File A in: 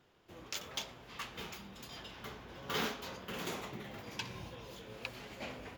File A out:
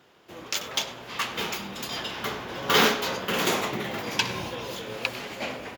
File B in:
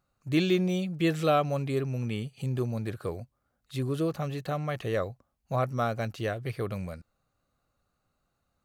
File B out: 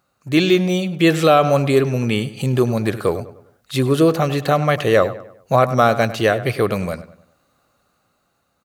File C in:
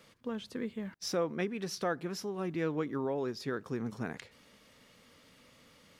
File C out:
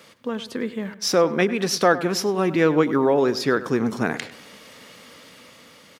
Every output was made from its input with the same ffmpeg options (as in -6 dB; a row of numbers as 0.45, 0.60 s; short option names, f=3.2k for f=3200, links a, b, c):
-filter_complex "[0:a]highpass=f=230:p=1,dynaudnorm=f=330:g=7:m=5dB,asplit=2[a][b];[b]adelay=100,lowpass=f=3k:p=1,volume=-14.5dB,asplit=2[c][d];[d]adelay=100,lowpass=f=3k:p=1,volume=0.42,asplit=2[e][f];[f]adelay=100,lowpass=f=3k:p=1,volume=0.42,asplit=2[g][h];[h]adelay=100,lowpass=f=3k:p=1,volume=0.42[i];[c][e][g][i]amix=inputs=4:normalize=0[j];[a][j]amix=inputs=2:normalize=0,alimiter=level_in=12.5dB:limit=-1dB:release=50:level=0:latency=1,volume=-1dB"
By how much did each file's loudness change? +15.5, +12.5, +14.5 LU